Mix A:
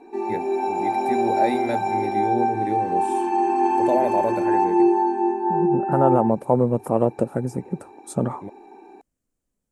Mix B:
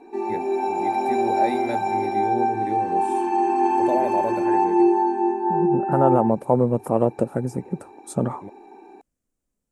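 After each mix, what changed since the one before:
first voice -3.0 dB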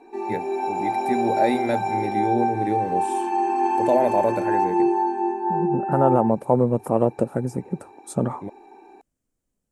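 first voice +5.5 dB; background: add low shelf 300 Hz -8 dB

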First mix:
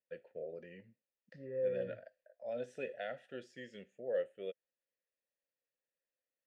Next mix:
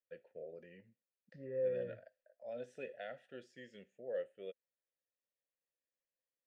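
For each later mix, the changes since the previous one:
first voice -4.5 dB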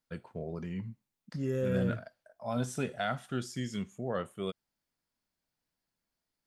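first voice: remove vowel filter e; second voice: remove vocal tract filter e

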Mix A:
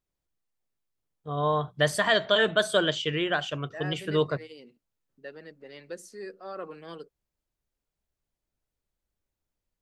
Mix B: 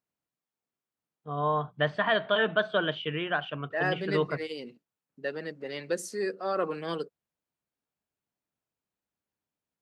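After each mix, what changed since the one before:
first voice: add speaker cabinet 150–2800 Hz, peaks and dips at 360 Hz -6 dB, 540 Hz -5 dB, 2000 Hz -5 dB; second voice +9.0 dB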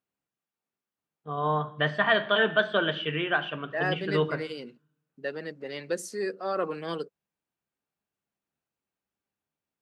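reverb: on, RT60 0.65 s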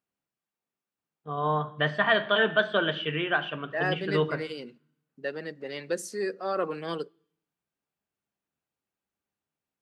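second voice: send on

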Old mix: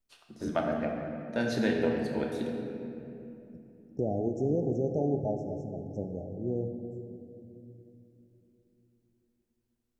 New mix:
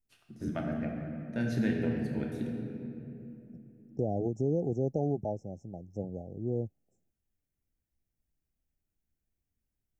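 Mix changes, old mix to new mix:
first voice: add graphic EQ 125/500/1000/4000/8000 Hz +6/-7/-10/-9/-5 dB; second voice: send off

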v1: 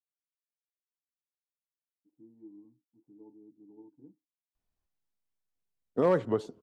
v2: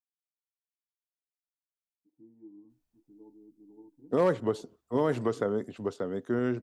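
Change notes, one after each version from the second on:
second voice: entry -1.85 s; master: add high shelf 4300 Hz +7.5 dB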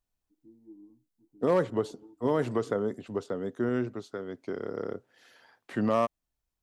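first voice: entry -1.75 s; second voice: entry -2.70 s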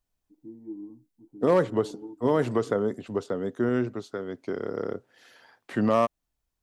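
first voice +12.0 dB; second voice +3.5 dB

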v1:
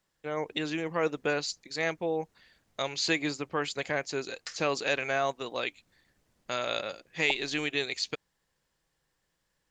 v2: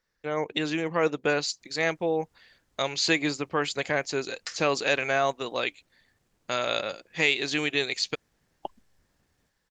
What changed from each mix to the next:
first voice +4.0 dB; second voice: entry +1.35 s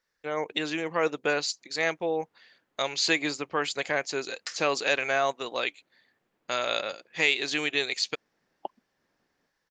first voice: add low shelf 210 Hz -11 dB; second voice: add BPF 230–2700 Hz

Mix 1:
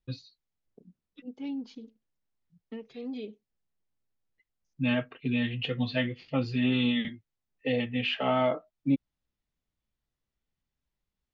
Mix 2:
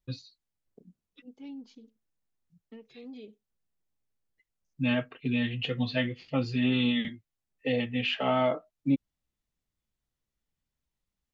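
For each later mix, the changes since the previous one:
second voice -7.5 dB; master: remove LPF 5400 Hz 12 dB/oct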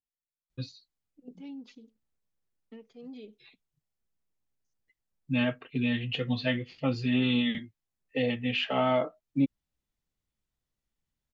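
first voice: entry +0.50 s

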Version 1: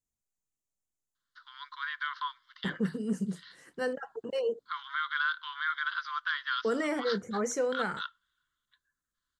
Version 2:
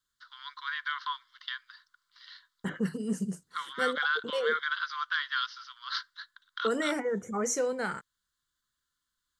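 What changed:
first voice: entry -1.15 s; master: add high shelf 3800 Hz +7.5 dB

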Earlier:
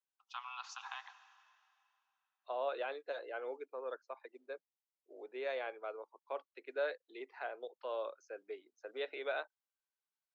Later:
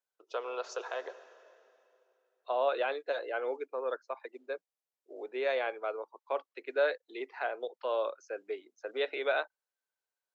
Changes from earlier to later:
first voice: remove rippled Chebyshev high-pass 770 Hz, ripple 6 dB; second voice +8.0 dB

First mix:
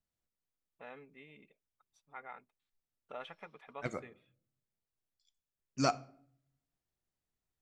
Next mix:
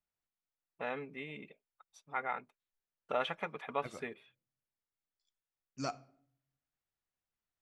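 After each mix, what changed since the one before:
first voice +11.5 dB; second voice -8.0 dB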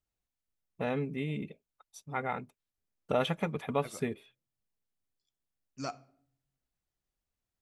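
first voice: remove band-pass 1500 Hz, Q 0.73

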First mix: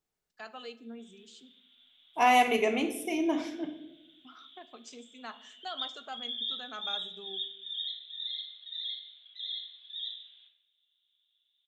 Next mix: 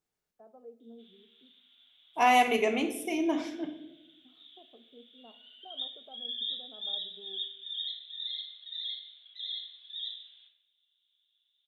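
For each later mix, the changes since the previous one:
first voice: add ladder low-pass 710 Hz, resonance 35%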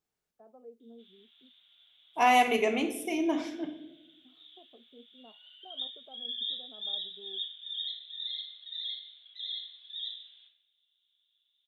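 first voice: send off

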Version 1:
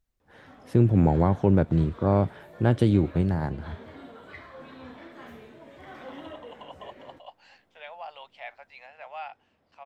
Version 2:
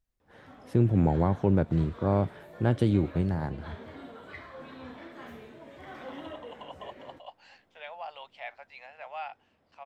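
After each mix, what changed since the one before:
first voice -3.5 dB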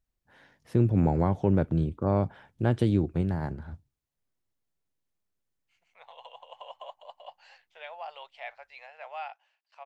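background: muted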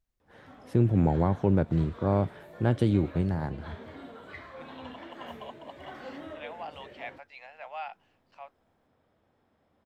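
second voice: entry -1.40 s; background: unmuted

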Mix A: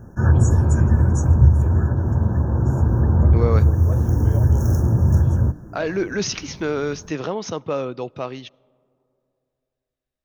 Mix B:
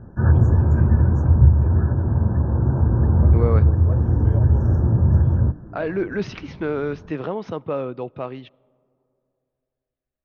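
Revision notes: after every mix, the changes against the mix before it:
master: add air absorption 370 m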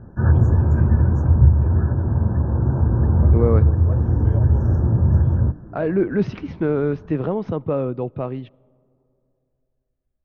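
second voice: add tilt -3 dB/oct

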